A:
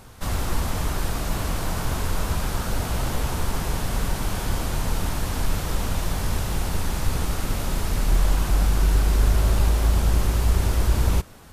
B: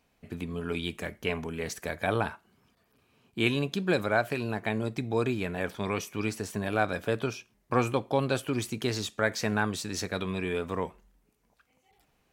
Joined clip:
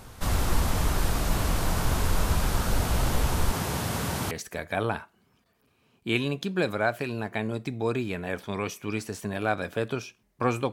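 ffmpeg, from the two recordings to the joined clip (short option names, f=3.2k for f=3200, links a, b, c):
-filter_complex "[0:a]asettb=1/sr,asplit=3[a][b][c];[a]atrim=end=3.524[d];[b]atrim=start=3.52:end=4.31,asetpts=PTS-STARTPTS,afade=t=in:d=0.004:c=qsin,afade=t=out:st=0.786:d=0.004:c=qsin,highpass=f=82:w=0.5412,highpass=f=82:w=1.3066[e];[c]atrim=start=4.306[f];[d][e]acrossfade=d=0.004:c1=hsin:c2=qsin[g];[g][f]acrossfade=d=0.004:c1=qsin:c2=hsin,apad=whole_dur=10.72,atrim=end=10.72,atrim=end=4.312[h];[1:a]atrim=start=1.618:end=8.03[i];[h][i]acrossfade=d=0.004:c1=hsin:c2=hsin"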